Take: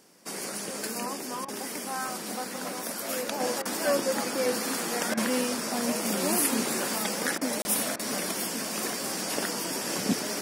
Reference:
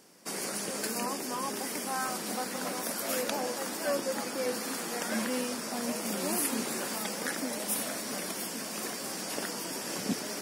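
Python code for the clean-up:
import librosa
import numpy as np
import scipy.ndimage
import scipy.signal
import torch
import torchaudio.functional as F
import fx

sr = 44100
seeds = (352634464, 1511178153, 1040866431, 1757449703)

y = fx.fix_interpolate(x, sr, at_s=(7.62,), length_ms=30.0)
y = fx.fix_interpolate(y, sr, at_s=(1.45, 3.62, 5.14, 7.38, 7.96), length_ms=32.0)
y = fx.fix_level(y, sr, at_s=3.4, step_db=-5.0)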